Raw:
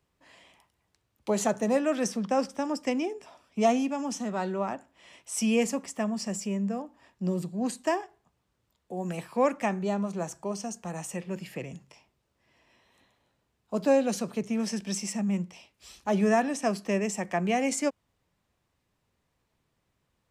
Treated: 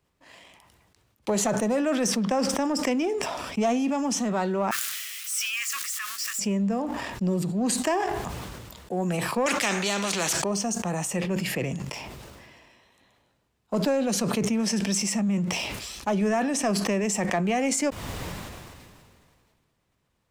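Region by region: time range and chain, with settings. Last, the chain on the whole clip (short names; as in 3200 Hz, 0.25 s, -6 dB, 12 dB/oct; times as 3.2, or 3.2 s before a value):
4.71–6.39 switching spikes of -30 dBFS + steep high-pass 1200 Hz 72 dB/oct + tilt -2 dB/oct
9.46–10.44 weighting filter D + spectral compressor 2:1
whole clip: compressor 3:1, threshold -30 dBFS; sample leveller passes 1; sustainer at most 27 dB/s; gain +3.5 dB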